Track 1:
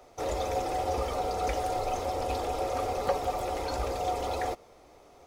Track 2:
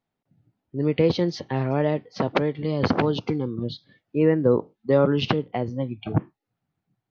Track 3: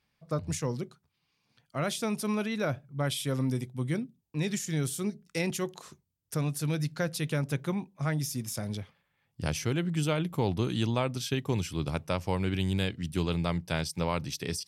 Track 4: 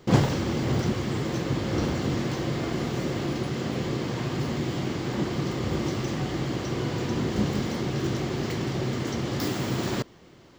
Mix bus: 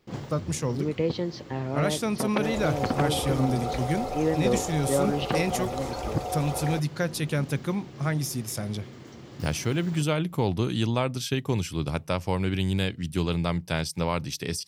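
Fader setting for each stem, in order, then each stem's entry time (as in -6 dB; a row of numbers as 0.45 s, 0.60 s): -1.5 dB, -6.5 dB, +3.0 dB, -16.0 dB; 2.25 s, 0.00 s, 0.00 s, 0.00 s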